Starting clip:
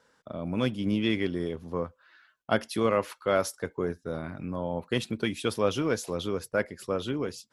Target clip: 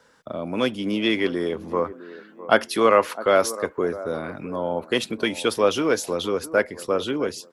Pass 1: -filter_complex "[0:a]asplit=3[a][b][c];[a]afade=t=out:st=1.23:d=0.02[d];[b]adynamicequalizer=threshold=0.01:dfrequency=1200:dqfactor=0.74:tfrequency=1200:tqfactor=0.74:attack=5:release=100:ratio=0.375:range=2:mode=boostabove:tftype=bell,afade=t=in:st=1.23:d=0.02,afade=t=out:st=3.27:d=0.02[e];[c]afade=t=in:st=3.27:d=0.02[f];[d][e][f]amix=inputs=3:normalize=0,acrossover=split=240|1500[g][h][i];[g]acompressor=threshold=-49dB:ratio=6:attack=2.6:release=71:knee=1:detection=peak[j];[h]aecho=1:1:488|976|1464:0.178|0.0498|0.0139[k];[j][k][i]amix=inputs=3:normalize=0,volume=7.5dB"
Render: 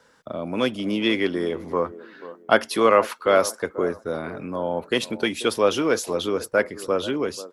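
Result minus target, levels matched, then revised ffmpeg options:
echo 0.17 s early
-filter_complex "[0:a]asplit=3[a][b][c];[a]afade=t=out:st=1.23:d=0.02[d];[b]adynamicequalizer=threshold=0.01:dfrequency=1200:dqfactor=0.74:tfrequency=1200:tqfactor=0.74:attack=5:release=100:ratio=0.375:range=2:mode=boostabove:tftype=bell,afade=t=in:st=1.23:d=0.02,afade=t=out:st=3.27:d=0.02[e];[c]afade=t=in:st=3.27:d=0.02[f];[d][e][f]amix=inputs=3:normalize=0,acrossover=split=240|1500[g][h][i];[g]acompressor=threshold=-49dB:ratio=6:attack=2.6:release=71:knee=1:detection=peak[j];[h]aecho=1:1:658|1316|1974:0.178|0.0498|0.0139[k];[j][k][i]amix=inputs=3:normalize=0,volume=7.5dB"

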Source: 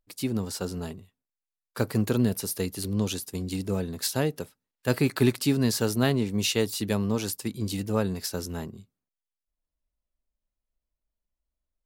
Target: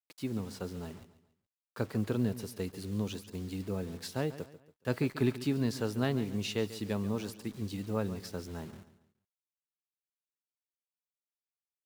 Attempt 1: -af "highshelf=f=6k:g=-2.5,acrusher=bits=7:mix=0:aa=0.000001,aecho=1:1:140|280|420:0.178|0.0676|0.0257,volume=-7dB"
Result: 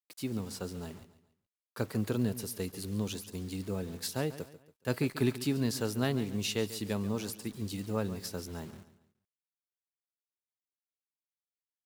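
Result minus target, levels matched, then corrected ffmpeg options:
8000 Hz band +6.5 dB
-af "highshelf=f=6k:g=-14.5,acrusher=bits=7:mix=0:aa=0.000001,aecho=1:1:140|280|420:0.178|0.0676|0.0257,volume=-7dB"

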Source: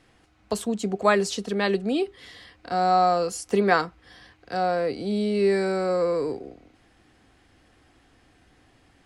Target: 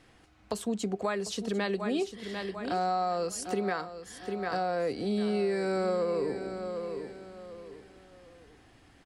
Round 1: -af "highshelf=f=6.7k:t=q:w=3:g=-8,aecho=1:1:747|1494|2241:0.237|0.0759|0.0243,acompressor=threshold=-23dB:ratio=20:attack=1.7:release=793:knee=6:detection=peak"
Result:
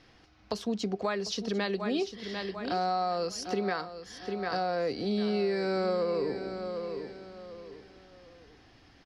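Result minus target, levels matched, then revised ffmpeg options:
8000 Hz band -3.5 dB
-af "aecho=1:1:747|1494|2241:0.237|0.0759|0.0243,acompressor=threshold=-23dB:ratio=20:attack=1.7:release=793:knee=6:detection=peak"

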